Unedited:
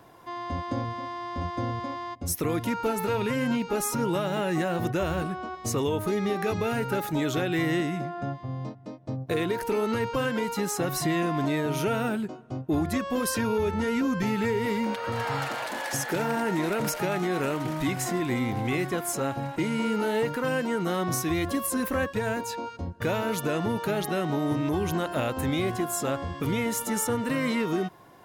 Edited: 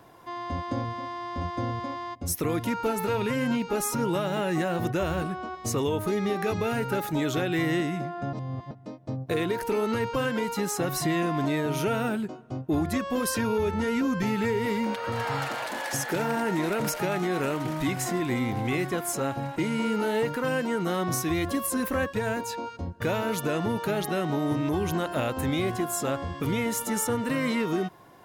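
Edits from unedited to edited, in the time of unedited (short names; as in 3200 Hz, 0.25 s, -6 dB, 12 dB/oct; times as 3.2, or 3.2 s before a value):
8.33–8.71 reverse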